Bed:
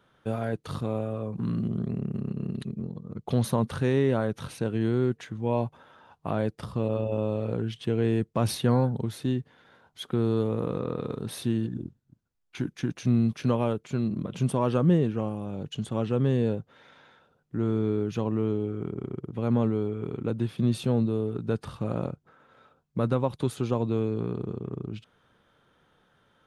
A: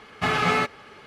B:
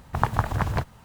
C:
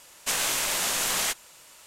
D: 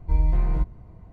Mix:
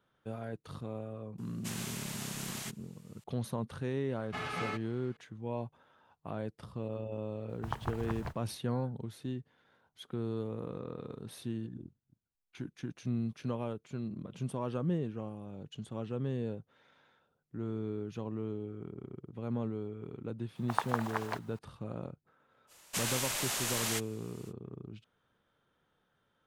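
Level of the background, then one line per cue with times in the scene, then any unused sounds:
bed −11 dB
0:01.38: mix in C −16 dB
0:04.11: mix in A −15.5 dB
0:07.49: mix in B −14.5 dB
0:20.55: mix in B −6.5 dB + high-pass filter 530 Hz
0:22.67: mix in C −8 dB, fades 0.05 s
not used: D

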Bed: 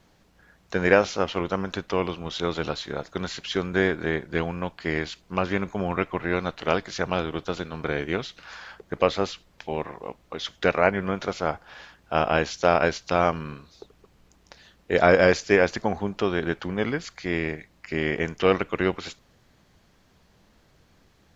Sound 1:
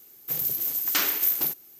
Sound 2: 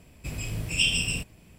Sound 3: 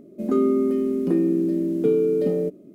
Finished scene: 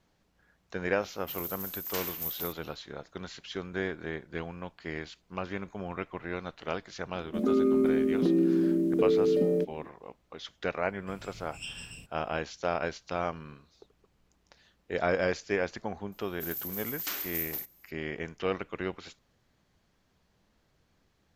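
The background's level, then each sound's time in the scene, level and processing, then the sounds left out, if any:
bed −10.5 dB
0:00.99: mix in 1 −12 dB, fades 0.10 s
0:07.15: mix in 3 −16 dB + boost into a limiter +13 dB
0:10.83: mix in 2 −17.5 dB
0:16.12: mix in 1 −11 dB

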